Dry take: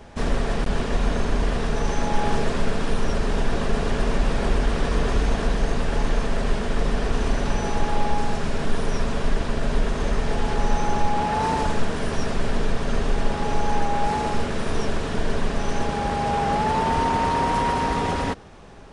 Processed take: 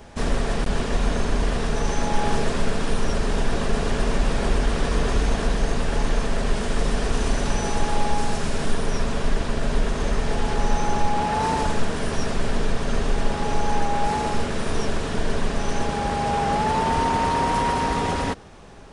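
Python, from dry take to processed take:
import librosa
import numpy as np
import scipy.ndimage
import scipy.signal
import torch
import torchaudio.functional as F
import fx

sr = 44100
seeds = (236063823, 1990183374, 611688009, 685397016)

y = fx.high_shelf(x, sr, hz=6300.0, db=fx.steps((0.0, 7.0), (6.55, 12.0), (8.73, 5.5)))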